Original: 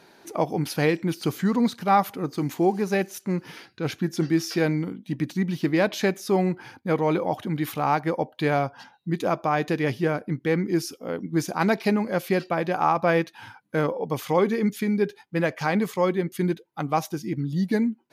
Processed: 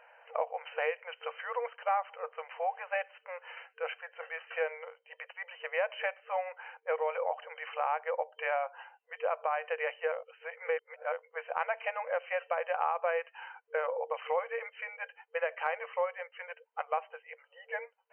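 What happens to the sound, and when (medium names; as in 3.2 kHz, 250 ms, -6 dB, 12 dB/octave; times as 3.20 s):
10.12–11.12 s: reverse
whole clip: FFT band-pass 460–3100 Hz; compression 3:1, threshold -27 dBFS; trim -2 dB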